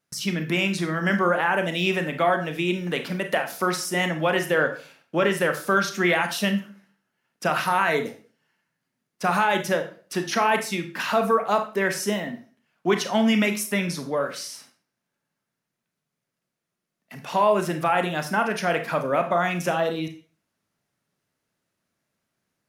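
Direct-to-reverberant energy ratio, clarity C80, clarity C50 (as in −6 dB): 6.0 dB, 15.0 dB, 10.5 dB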